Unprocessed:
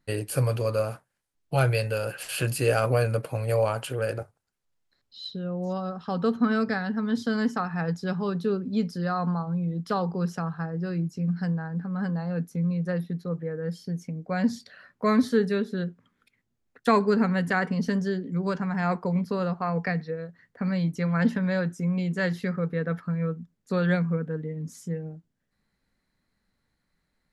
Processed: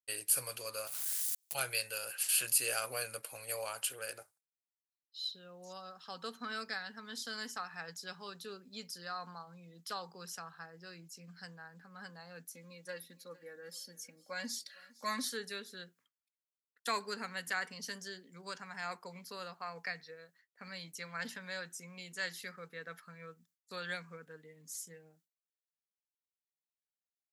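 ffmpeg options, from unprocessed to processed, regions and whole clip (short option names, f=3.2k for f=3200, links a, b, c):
-filter_complex "[0:a]asettb=1/sr,asplit=3[a][b][c];[a]atrim=end=0.874[d];[b]atrim=start=0.87:end=1.55,asetpts=PTS-STARTPTS,afade=t=in:d=0.004:c=qsin,afade=t=out:st=0.676:d=0.004:c=qsin,aeval=exprs='val(0)+0.5*0.0224*sgn(val(0))':c=same,highshelf=f=3.1k:g=9.5,acompressor=threshold=-37dB:ratio=10:attack=3.2:release=140:knee=1:detection=peak[e];[c]atrim=start=1.546[f];[d][e]acrossfade=d=0.004:c1=hsin:c2=qsin[g];[g][f]acrossfade=d=0.004:c1=qsin:c2=hsin,asettb=1/sr,asplit=3[h][i][j];[h]atrim=end=12.534[k];[i]atrim=start=12.53:end=15.3,asetpts=PTS-STARTPTS,afade=t=in:d=0.004:c=qsin,afade=t=out:st=2.766:d=0.004:c=qsin,aecho=1:1:3.6:0.74,atrim=end_sample=122157,aecho=1:1:457|914:0.0794|0.0207,atrim=end_sample=122157[l];[j]atrim=start=15.296[m];[k][l]acrossfade=d=0.004:c1=hsin:c2=qsin[n];[n][m]acrossfade=d=0.004:c1=qsin:c2=hsin,agate=range=-33dB:threshold=-46dB:ratio=3:detection=peak,aderivative,volume=4dB"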